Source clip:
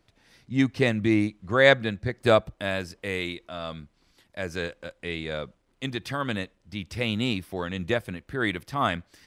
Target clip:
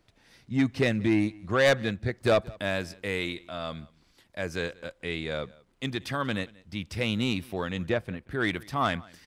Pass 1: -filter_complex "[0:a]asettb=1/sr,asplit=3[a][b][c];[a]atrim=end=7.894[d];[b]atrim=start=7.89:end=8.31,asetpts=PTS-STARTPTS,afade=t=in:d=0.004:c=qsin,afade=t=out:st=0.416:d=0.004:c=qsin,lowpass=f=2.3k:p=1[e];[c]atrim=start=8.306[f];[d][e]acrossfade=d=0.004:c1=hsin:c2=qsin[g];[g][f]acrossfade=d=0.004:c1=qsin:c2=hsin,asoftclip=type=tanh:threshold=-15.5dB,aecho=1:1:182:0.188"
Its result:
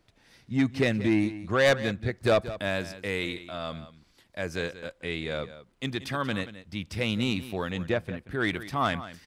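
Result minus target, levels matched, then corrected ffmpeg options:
echo-to-direct +9.5 dB
-filter_complex "[0:a]asettb=1/sr,asplit=3[a][b][c];[a]atrim=end=7.894[d];[b]atrim=start=7.89:end=8.31,asetpts=PTS-STARTPTS,afade=t=in:d=0.004:c=qsin,afade=t=out:st=0.416:d=0.004:c=qsin,lowpass=f=2.3k:p=1[e];[c]atrim=start=8.306[f];[d][e]acrossfade=d=0.004:c1=hsin:c2=qsin[g];[g][f]acrossfade=d=0.004:c1=qsin:c2=hsin,asoftclip=type=tanh:threshold=-15.5dB,aecho=1:1:182:0.0631"

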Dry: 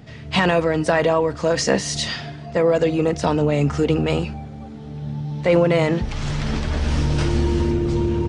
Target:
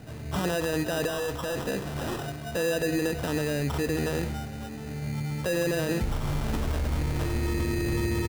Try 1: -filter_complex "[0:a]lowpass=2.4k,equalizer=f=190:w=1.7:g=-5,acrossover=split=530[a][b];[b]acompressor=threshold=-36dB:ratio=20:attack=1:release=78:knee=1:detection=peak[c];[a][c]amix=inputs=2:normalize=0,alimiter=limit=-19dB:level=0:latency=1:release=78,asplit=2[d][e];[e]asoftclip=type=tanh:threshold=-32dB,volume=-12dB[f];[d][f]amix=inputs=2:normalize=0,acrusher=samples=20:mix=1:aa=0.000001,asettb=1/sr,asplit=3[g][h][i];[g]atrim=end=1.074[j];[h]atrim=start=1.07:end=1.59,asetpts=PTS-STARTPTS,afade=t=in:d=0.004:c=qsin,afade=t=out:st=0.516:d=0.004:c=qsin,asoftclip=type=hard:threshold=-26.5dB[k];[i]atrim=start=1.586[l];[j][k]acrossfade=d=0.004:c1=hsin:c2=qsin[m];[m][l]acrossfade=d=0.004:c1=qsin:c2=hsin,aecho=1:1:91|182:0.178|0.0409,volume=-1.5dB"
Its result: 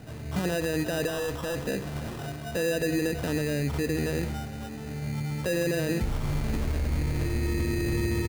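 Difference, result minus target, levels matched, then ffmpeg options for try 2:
compressor: peak gain reduction +9.5 dB
-filter_complex "[0:a]lowpass=2.4k,equalizer=f=190:w=1.7:g=-5,acrossover=split=530[a][b];[b]acompressor=threshold=-26dB:ratio=20:attack=1:release=78:knee=1:detection=peak[c];[a][c]amix=inputs=2:normalize=0,alimiter=limit=-19dB:level=0:latency=1:release=78,asplit=2[d][e];[e]asoftclip=type=tanh:threshold=-32dB,volume=-12dB[f];[d][f]amix=inputs=2:normalize=0,acrusher=samples=20:mix=1:aa=0.000001,asettb=1/sr,asplit=3[g][h][i];[g]atrim=end=1.074[j];[h]atrim=start=1.07:end=1.59,asetpts=PTS-STARTPTS,afade=t=in:d=0.004:c=qsin,afade=t=out:st=0.516:d=0.004:c=qsin,asoftclip=type=hard:threshold=-26.5dB[k];[i]atrim=start=1.586[l];[j][k]acrossfade=d=0.004:c1=hsin:c2=qsin[m];[m][l]acrossfade=d=0.004:c1=qsin:c2=hsin,aecho=1:1:91|182:0.178|0.0409,volume=-1.5dB"

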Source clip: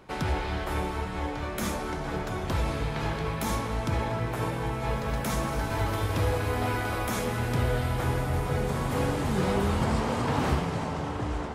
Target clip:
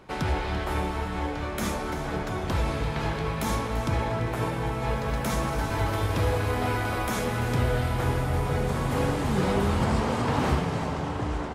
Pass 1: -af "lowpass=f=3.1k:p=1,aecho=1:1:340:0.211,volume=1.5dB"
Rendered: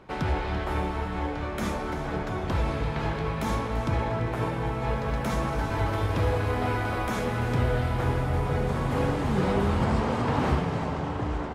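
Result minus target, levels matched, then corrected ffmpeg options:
8000 Hz band -6.5 dB
-af "lowpass=f=12k:p=1,aecho=1:1:340:0.211,volume=1.5dB"

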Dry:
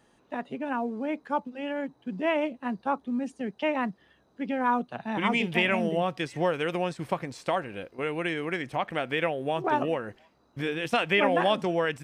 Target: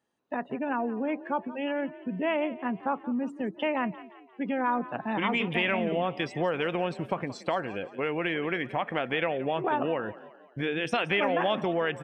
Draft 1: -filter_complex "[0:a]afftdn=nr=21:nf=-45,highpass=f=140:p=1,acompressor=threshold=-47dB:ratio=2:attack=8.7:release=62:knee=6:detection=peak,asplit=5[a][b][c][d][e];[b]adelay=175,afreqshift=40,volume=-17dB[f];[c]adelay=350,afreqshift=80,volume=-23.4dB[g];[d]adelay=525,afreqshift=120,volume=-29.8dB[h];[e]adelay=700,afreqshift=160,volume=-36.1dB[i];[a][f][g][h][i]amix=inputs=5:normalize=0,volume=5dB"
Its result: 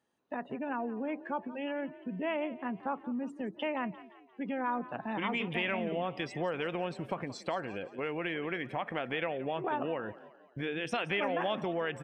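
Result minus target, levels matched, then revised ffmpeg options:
compressor: peak gain reduction +6 dB
-filter_complex "[0:a]afftdn=nr=21:nf=-45,highpass=f=140:p=1,acompressor=threshold=-35.5dB:ratio=2:attack=8.7:release=62:knee=6:detection=peak,asplit=5[a][b][c][d][e];[b]adelay=175,afreqshift=40,volume=-17dB[f];[c]adelay=350,afreqshift=80,volume=-23.4dB[g];[d]adelay=525,afreqshift=120,volume=-29.8dB[h];[e]adelay=700,afreqshift=160,volume=-36.1dB[i];[a][f][g][h][i]amix=inputs=5:normalize=0,volume=5dB"

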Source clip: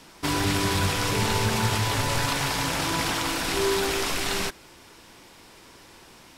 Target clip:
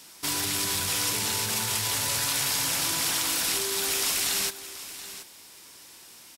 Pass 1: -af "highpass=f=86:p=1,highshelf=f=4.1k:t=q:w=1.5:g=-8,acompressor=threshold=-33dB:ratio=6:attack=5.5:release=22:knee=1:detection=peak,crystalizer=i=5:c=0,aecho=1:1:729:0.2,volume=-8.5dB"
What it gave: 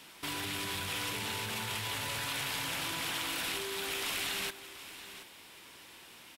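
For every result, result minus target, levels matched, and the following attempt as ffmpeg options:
compressor: peak gain reduction +5.5 dB; 8000 Hz band -5.0 dB
-af "highpass=f=86:p=1,highshelf=f=4.1k:t=q:w=1.5:g=-8,acompressor=threshold=-26dB:ratio=6:attack=5.5:release=22:knee=1:detection=peak,crystalizer=i=5:c=0,aecho=1:1:729:0.2,volume=-8.5dB"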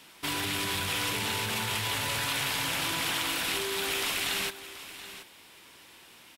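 8000 Hz band -5.0 dB
-af "highpass=f=86:p=1,acompressor=threshold=-26dB:ratio=6:attack=5.5:release=22:knee=1:detection=peak,crystalizer=i=5:c=0,aecho=1:1:729:0.2,volume=-8.5dB"

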